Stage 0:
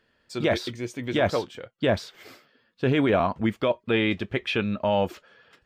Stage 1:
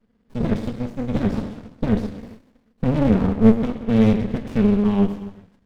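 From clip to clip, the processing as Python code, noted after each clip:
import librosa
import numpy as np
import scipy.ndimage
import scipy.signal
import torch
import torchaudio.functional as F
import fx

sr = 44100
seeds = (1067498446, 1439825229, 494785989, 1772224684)

y = fx.curve_eq(x, sr, hz=(150.0, 220.0, 530.0, 860.0), db=(0, 13, -16, -9))
y = fx.rev_gated(y, sr, seeds[0], gate_ms=440, shape='falling', drr_db=5.5)
y = fx.running_max(y, sr, window=65)
y = F.gain(torch.from_numpy(y), 3.5).numpy()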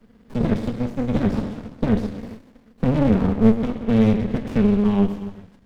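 y = fx.band_squash(x, sr, depth_pct=40)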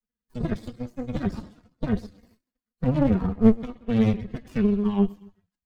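y = fx.bin_expand(x, sr, power=2.0)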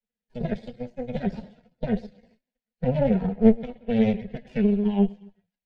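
y = scipy.signal.sosfilt(scipy.signal.butter(2, 2600.0, 'lowpass', fs=sr, output='sos'), x)
y = fx.low_shelf(y, sr, hz=350.0, db=-8.0)
y = fx.fixed_phaser(y, sr, hz=310.0, stages=6)
y = F.gain(torch.from_numpy(y), 7.0).numpy()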